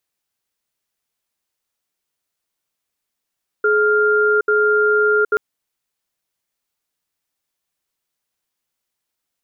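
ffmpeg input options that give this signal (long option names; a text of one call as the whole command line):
ffmpeg -f lavfi -i "aevalsrc='0.178*(sin(2*PI*423*t)+sin(2*PI*1400*t))*clip(min(mod(t,0.84),0.77-mod(t,0.84))/0.005,0,1)':duration=1.73:sample_rate=44100" out.wav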